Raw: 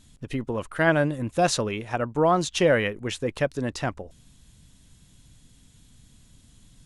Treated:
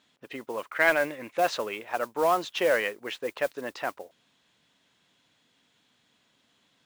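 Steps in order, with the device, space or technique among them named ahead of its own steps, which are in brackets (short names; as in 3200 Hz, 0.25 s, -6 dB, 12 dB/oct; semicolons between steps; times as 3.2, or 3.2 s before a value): carbon microphone (BPF 500–3200 Hz; soft clip -13 dBFS, distortion -20 dB; modulation noise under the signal 20 dB); 0.71–1.38 bell 2200 Hz +11.5 dB 0.47 oct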